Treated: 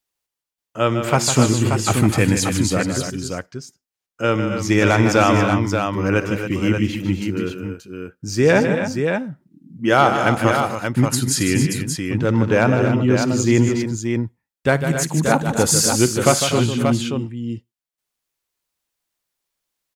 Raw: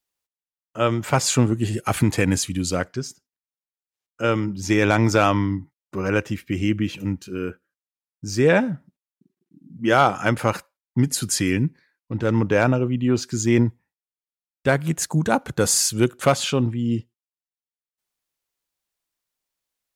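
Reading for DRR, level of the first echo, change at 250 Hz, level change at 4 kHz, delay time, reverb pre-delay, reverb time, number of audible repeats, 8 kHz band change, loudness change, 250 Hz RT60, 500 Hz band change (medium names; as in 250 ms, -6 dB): no reverb, -19.5 dB, +4.0 dB, +4.0 dB, 57 ms, no reverb, no reverb, 5, +4.0 dB, +3.0 dB, no reverb, +4.0 dB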